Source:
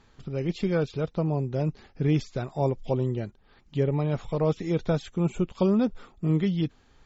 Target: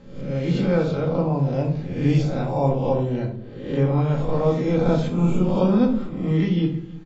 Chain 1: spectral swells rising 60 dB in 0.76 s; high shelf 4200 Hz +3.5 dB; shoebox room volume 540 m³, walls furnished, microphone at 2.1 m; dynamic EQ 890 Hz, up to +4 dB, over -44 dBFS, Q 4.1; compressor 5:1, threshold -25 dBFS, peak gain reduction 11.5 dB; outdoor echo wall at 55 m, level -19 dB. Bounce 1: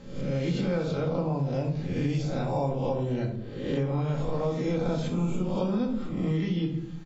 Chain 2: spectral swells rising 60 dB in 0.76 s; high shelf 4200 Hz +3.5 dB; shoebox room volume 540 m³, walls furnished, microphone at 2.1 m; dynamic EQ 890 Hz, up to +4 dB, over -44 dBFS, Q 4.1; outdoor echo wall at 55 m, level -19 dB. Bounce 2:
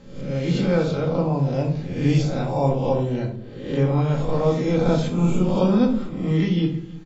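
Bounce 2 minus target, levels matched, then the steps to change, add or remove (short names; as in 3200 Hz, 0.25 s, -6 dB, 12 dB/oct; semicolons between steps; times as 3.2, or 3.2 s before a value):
8000 Hz band +6.0 dB
change: high shelf 4200 Hz -5 dB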